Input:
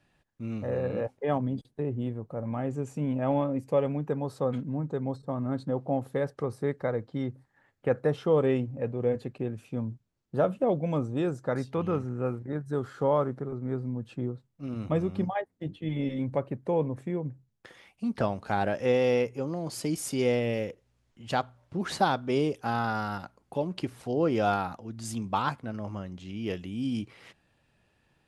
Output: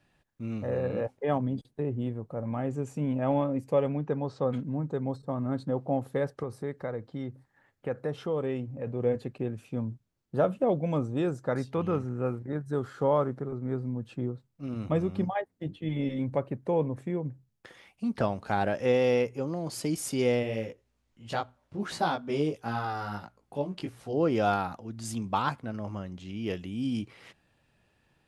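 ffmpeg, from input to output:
ffmpeg -i in.wav -filter_complex "[0:a]asettb=1/sr,asplit=3[link_01][link_02][link_03];[link_01]atrim=end=3.884[link_04];[link_02]atrim=start=3.88:end=4.5,asetpts=PTS-STARTPTS,afade=type=in:duration=0.004:curve=qsin,afade=type=out:start_time=0.616:duration=0.004:curve=qsin,lowpass=frequency=6100:width=0.5412,lowpass=frequency=6100:width=1.3066[link_05];[link_03]atrim=start=4.496[link_06];[link_04][link_05]acrossfade=duration=0.004:curve1=hsin:curve2=qsin[link_07];[link_07][link_06]acrossfade=duration=0.004:curve1=qsin:curve2=hsin,asettb=1/sr,asplit=3[link_08][link_09][link_10];[link_08]atrim=end=6.434[link_11];[link_09]atrim=start=6.43:end=8.87,asetpts=PTS-STARTPTS,afade=type=in:duration=0.004:curve=qsin,afade=type=out:start_time=2.436:duration=0.004:curve=qsin,acompressor=threshold=-38dB:ratio=1.5:attack=3.2:release=140:knee=1:detection=peak[link_12];[link_10]atrim=start=8.866[link_13];[link_11][link_12]acrossfade=duration=0.004:curve1=hsin:curve2=qsin[link_14];[link_14][link_13]acrossfade=duration=0.004:curve1=qsin:curve2=hsin,asplit=3[link_15][link_16][link_17];[link_15]afade=type=out:start_time=20.42:duration=0.02[link_18];[link_16]flanger=delay=17.5:depth=3.6:speed=1.5,afade=type=in:start_time=20.42:duration=0.02,afade=type=out:start_time=24.13:duration=0.02[link_19];[link_17]afade=type=in:start_time=24.13:duration=0.02[link_20];[link_18][link_19][link_20]amix=inputs=3:normalize=0" out.wav

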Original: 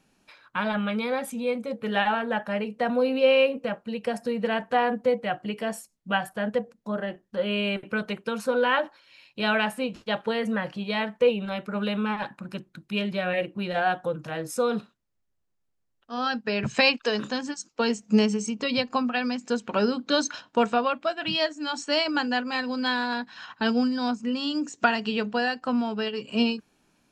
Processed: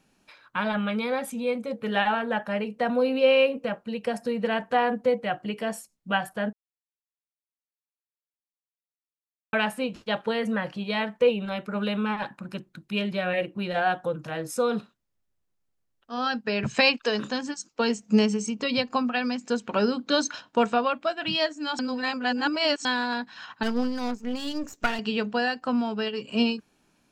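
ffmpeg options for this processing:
ffmpeg -i in.wav -filter_complex "[0:a]asettb=1/sr,asplit=3[link_01][link_02][link_03];[link_01]atrim=end=23.634[link_04];[link_02]atrim=start=23.63:end=24.99,asetpts=PTS-STARTPTS,afade=type=in:duration=0.004:curve=qsin,afade=type=out:start_time=1.356:duration=0.004:curve=qsin,aeval=exprs='if(lt(val(0),0),0.251*val(0),val(0))':channel_layout=same[link_05];[link_03]atrim=start=24.986[link_06];[link_04][link_05]acrossfade=duration=0.004:curve1=hsin:curve2=qsin[link_07];[link_07][link_06]acrossfade=duration=0.004:curve1=qsin:curve2=hsin,asplit=5[link_08][link_09][link_10][link_11][link_12];[link_08]atrim=end=6.53,asetpts=PTS-STARTPTS,afade=type=out:start_time=6.526:duration=0.004:curve=hsin[link_13];[link_09]atrim=start=6.53:end=9.53,asetpts=PTS-STARTPTS,volume=0[link_14];[link_10]atrim=start=9.53:end=21.792,asetpts=PTS-STARTPTS,afade=type=in:duration=0.004:curve=hsin[link_15];[link_11]atrim=start=21.788:end=22.852,asetpts=PTS-STARTPTS,areverse[link_16];[link_12]atrim=start=22.848[link_17];[link_13][link_14][link_15]concat=n=3:v=0:a=1[link_18];[link_18][link_16]acrossfade=duration=0.004:curve1=hsin:curve2=hsin[link_19];[link_19][link_17]acrossfade=duration=0.004:curve1=hsin:curve2=hsin" out.wav

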